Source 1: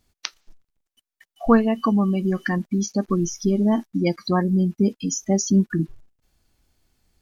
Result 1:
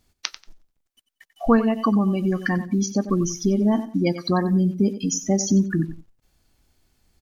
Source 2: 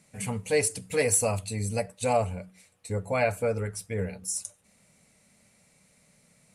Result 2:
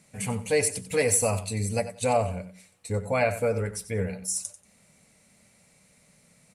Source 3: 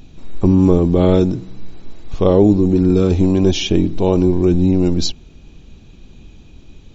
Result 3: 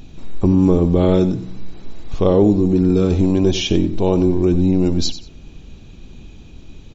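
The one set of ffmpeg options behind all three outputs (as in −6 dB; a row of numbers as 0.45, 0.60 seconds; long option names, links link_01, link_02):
-filter_complex "[0:a]aecho=1:1:92|184:0.211|0.0423,asplit=2[link_01][link_02];[link_02]acompressor=threshold=-22dB:ratio=6,volume=-1dB[link_03];[link_01][link_03]amix=inputs=2:normalize=0,volume=-3.5dB"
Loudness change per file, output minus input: −0.5, +1.5, −1.5 LU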